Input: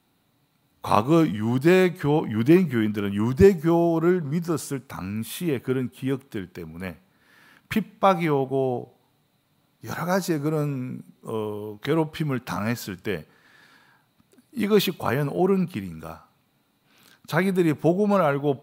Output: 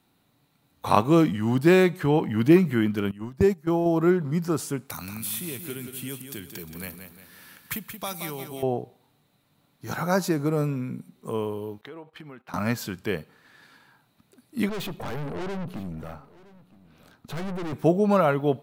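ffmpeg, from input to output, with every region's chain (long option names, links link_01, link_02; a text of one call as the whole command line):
ffmpeg -i in.wav -filter_complex "[0:a]asettb=1/sr,asplit=3[link_01][link_02][link_03];[link_01]atrim=end=3.114[link_04];[link_02]atrim=start=3.11:end=3.86,asetpts=PTS-STARTPTS,afade=type=in:duration=0.004:curve=qsin,afade=type=out:start_time=0.746:duration=0.004:curve=qsin,agate=range=-18dB:threshold=-21dB:ratio=16:release=100:detection=peak,acompressor=threshold=-24dB:ratio=1.5:attack=3.2:release=140:knee=1:detection=peak[link_05];[link_03]atrim=start=3.856[link_06];[link_04][link_05]acrossfade=duration=0.004:curve1=hsin:curve2=qsin[link_07];[link_07][link_06]acrossfade=duration=0.004:curve1=qsin:curve2=hsin,asettb=1/sr,asplit=3[link_08][link_09][link_10];[link_08]atrim=end=4.904[link_11];[link_09]atrim=start=4.9:end=8.63,asetpts=PTS-STARTPTS,afade=type=in:duration=0.004:curve=qsin,afade=type=out:start_time=3.726:duration=0.004:curve=qsin,aemphasis=mode=production:type=75kf,acrossover=split=88|2200|5500[link_12][link_13][link_14][link_15];[link_12]acompressor=threshold=-50dB:ratio=3[link_16];[link_13]acompressor=threshold=-39dB:ratio=3[link_17];[link_14]acompressor=threshold=-44dB:ratio=3[link_18];[link_15]acompressor=threshold=-33dB:ratio=3[link_19];[link_16][link_17][link_18][link_19]amix=inputs=4:normalize=0,aecho=1:1:177|354|531|708|885:0.398|0.179|0.0806|0.0363|0.0163,atrim=end_sample=164493[link_20];[link_10]atrim=start=8.626[link_21];[link_11][link_20]acrossfade=duration=0.004:curve1=hsin:curve2=qsin[link_22];[link_22][link_21]acrossfade=duration=0.004:curve1=qsin:curve2=hsin,asettb=1/sr,asplit=3[link_23][link_24][link_25];[link_23]atrim=end=11.814[link_26];[link_24]atrim=start=11.81:end=12.54,asetpts=PTS-STARTPTS,afade=type=in:duration=0.004:curve=qsin,afade=type=out:start_time=0.726:duration=0.004:curve=qsin,agate=range=-16dB:threshold=-36dB:ratio=16:release=100:detection=peak,bass=frequency=250:gain=-11,treble=frequency=4000:gain=-10,acompressor=threshold=-41dB:ratio=4:attack=3.2:release=140:knee=1:detection=peak[link_27];[link_25]atrim=start=12.536[link_28];[link_26][link_27]acrossfade=duration=0.004:curve1=hsin:curve2=qsin[link_29];[link_29][link_28]acrossfade=duration=0.004:curve1=qsin:curve2=hsin,asettb=1/sr,asplit=3[link_30][link_31][link_32];[link_30]atrim=end=14.694[link_33];[link_31]atrim=start=14.69:end=17.73,asetpts=PTS-STARTPTS,afade=type=in:duration=0.004:curve=qsin,afade=type=out:start_time=3.036:duration=0.004:curve=qsin,tiltshelf=frequency=1500:gain=5.5,aeval=exprs='(tanh(35.5*val(0)+0.5)-tanh(0.5))/35.5':channel_layout=same,aecho=1:1:966:0.0891,atrim=end_sample=134064[link_34];[link_32]atrim=start=17.726[link_35];[link_33][link_34]acrossfade=duration=0.004:curve1=hsin:curve2=qsin[link_36];[link_36][link_35]acrossfade=duration=0.004:curve1=qsin:curve2=hsin" out.wav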